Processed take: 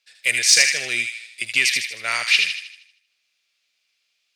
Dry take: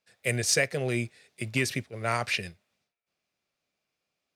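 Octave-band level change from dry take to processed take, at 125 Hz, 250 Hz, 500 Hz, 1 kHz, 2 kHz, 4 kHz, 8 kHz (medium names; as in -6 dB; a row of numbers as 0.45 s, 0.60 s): under -15 dB, -10.5 dB, -7.0 dB, +0.5 dB, +12.0 dB, +15.0 dB, +11.5 dB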